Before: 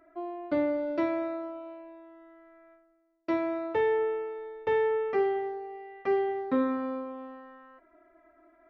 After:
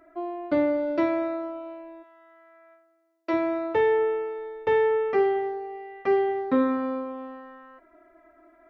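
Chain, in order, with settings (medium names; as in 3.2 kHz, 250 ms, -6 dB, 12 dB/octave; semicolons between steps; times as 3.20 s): 2.02–3.32 s: high-pass 890 Hz -> 360 Hz 12 dB/octave; trim +4.5 dB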